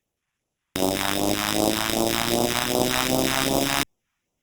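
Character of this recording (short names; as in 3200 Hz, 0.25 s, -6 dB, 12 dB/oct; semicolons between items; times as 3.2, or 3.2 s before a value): aliases and images of a low sample rate 4400 Hz, jitter 0%; phasing stages 2, 2.6 Hz, lowest notch 420–1700 Hz; Opus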